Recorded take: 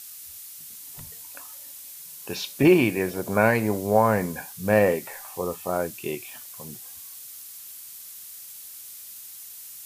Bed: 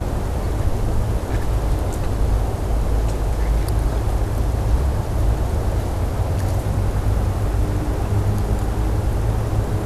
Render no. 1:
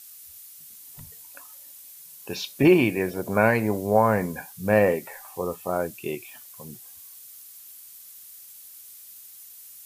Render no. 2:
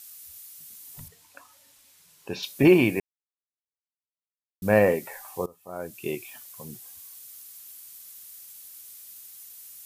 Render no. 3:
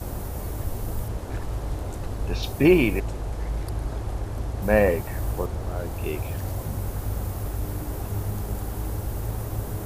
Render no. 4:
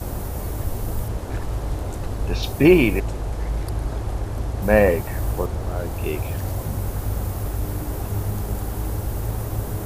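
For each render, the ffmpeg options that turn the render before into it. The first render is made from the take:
-af "afftdn=nr=6:nf=-42"
-filter_complex "[0:a]asettb=1/sr,asplit=3[s0][s1][s2];[s0]atrim=end=1.084[s3];[s1]atrim=start=1.08:end=2.43,asetpts=PTS-STARTPTS,afade=t=in:d=0.004:c=qsin,afade=t=out:st=1.346:d=0.004:c=qsin,aemphasis=mode=reproduction:type=50fm[s4];[s2]atrim=start=2.426[s5];[s3][s4]acrossfade=d=0.004:c1=hsin:c2=qsin[s6];[s6][s5]acrossfade=d=0.004:c1=qsin:c2=hsin,asplit=4[s7][s8][s9][s10];[s7]atrim=end=3,asetpts=PTS-STARTPTS,afade=t=out:st=2.996:d=0.004:c=hsin[s11];[s8]atrim=start=3:end=4.62,asetpts=PTS-STARTPTS,volume=0[s12];[s9]atrim=start=4.62:end=5.46,asetpts=PTS-STARTPTS,afade=t=in:d=0.004:c=hsin,afade=t=out:st=0.836:d=0.004:c=hsin:silence=0.0891251[s13];[s10]atrim=start=5.46,asetpts=PTS-STARTPTS,afade=t=in:d=0.61:c=qua:silence=0.0891251[s14];[s11][s12][s13][s14]concat=n=4:v=0:a=1"
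-filter_complex "[1:a]volume=0.335[s0];[0:a][s0]amix=inputs=2:normalize=0"
-af "volume=1.5"

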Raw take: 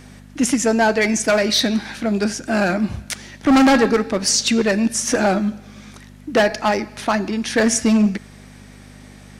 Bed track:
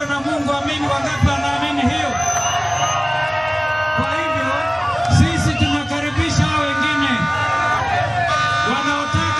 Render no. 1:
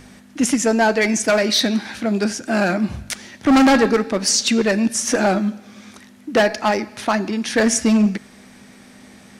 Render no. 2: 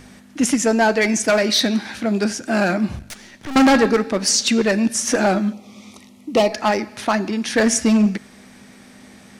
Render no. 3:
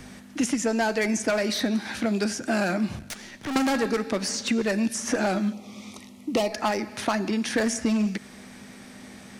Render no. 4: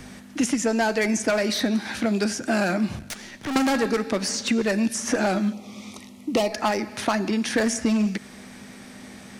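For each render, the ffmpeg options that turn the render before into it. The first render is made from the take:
-af "bandreject=f=50:t=h:w=4,bandreject=f=100:t=h:w=4,bandreject=f=150:t=h:w=4"
-filter_complex "[0:a]asettb=1/sr,asplit=3[s0][s1][s2];[s0]atrim=end=2.994[s3];[s1]atrim=start=2.99:end=3.56,asetpts=PTS-STARTPTS,afade=t=in:d=0.004:c=qsin,afade=t=out:st=0.566:d=0.004:c=qsin,aeval=exprs='(tanh(25.1*val(0)+0.7)-tanh(0.7))/25.1':c=same[s4];[s2]atrim=start=3.556[s5];[s3][s4]acrossfade=d=0.004:c1=hsin:c2=qsin[s6];[s6][s5]acrossfade=d=0.004:c1=qsin:c2=hsin,asettb=1/sr,asplit=3[s7][s8][s9];[s7]atrim=end=5.534[s10];[s8]atrim=start=5.53:end=6.53,asetpts=PTS-STARTPTS,afade=t=in:d=0.004:c=qsin,afade=t=out:st=0.996:d=0.004:c=qsin,asuperstop=centerf=1600:order=4:qfactor=2[s11];[s9]atrim=start=6.526[s12];[s10][s11]acrossfade=d=0.004:c1=hsin:c2=qsin[s13];[s13][s12]acrossfade=d=0.004:c1=qsin:c2=hsin"
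-filter_complex "[0:a]acrossover=split=100|2100|6800[s0][s1][s2][s3];[s0]acompressor=threshold=0.00355:ratio=4[s4];[s1]acompressor=threshold=0.0708:ratio=4[s5];[s2]acompressor=threshold=0.0158:ratio=4[s6];[s3]acompressor=threshold=0.0126:ratio=4[s7];[s4][s5][s6][s7]amix=inputs=4:normalize=0"
-af "volume=1.26"

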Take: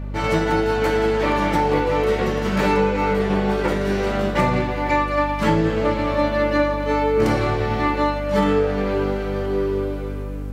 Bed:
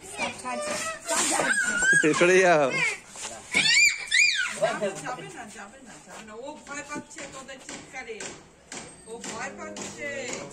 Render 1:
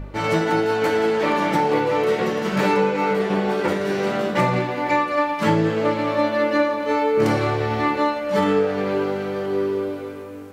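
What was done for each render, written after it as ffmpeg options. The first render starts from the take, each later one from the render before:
-af "bandreject=f=50:t=h:w=4,bandreject=f=100:t=h:w=4,bandreject=f=150:t=h:w=4,bandreject=f=200:t=h:w=4,bandreject=f=250:t=h:w=4"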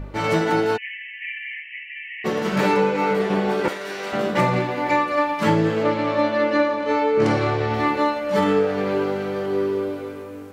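-filter_complex "[0:a]asplit=3[s0][s1][s2];[s0]afade=t=out:st=0.76:d=0.02[s3];[s1]asuperpass=centerf=2300:order=20:qfactor=1.8,afade=t=in:st=0.76:d=0.02,afade=t=out:st=2.24:d=0.02[s4];[s2]afade=t=in:st=2.24:d=0.02[s5];[s3][s4][s5]amix=inputs=3:normalize=0,asettb=1/sr,asplit=3[s6][s7][s8];[s6]atrim=end=3.684[s9];[s7]atrim=start=3.68:end=4.13,asetpts=PTS-STARTPTS,afade=t=in:d=0.004:c=qsin,afade=t=out:st=0.446:d=0.004:c=qsin,highpass=f=1200:p=1[s10];[s8]atrim=start=4.126[s11];[s9][s10]acrossfade=d=0.004:c1=hsin:c2=qsin[s12];[s12][s11]acrossfade=d=0.004:c1=qsin:c2=hsin,asettb=1/sr,asplit=3[s13][s14][s15];[s13]atrim=end=5.834[s16];[s14]atrim=start=5.83:end=7.74,asetpts=PTS-STARTPTS,afade=t=in:d=0.004:c=qsin,afade=t=out:st=1.906:d=0.004:c=qsin,lowpass=6800[s17];[s15]atrim=start=7.736[s18];[s16][s17]acrossfade=d=0.004:c1=hsin:c2=qsin[s19];[s19][s18]acrossfade=d=0.004:c1=qsin:c2=hsin"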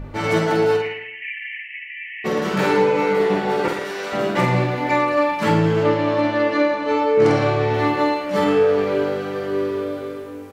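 -filter_complex "[0:a]asplit=2[s0][s1];[s1]adelay=48,volume=0.562[s2];[s0][s2]amix=inputs=2:normalize=0,asplit=2[s3][s4];[s4]adelay=111,lowpass=f=3800:p=1,volume=0.376,asplit=2[s5][s6];[s6]adelay=111,lowpass=f=3800:p=1,volume=0.36,asplit=2[s7][s8];[s8]adelay=111,lowpass=f=3800:p=1,volume=0.36,asplit=2[s9][s10];[s10]adelay=111,lowpass=f=3800:p=1,volume=0.36[s11];[s3][s5][s7][s9][s11]amix=inputs=5:normalize=0"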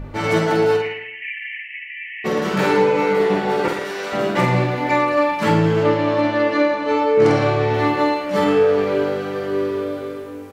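-af "volume=1.12"

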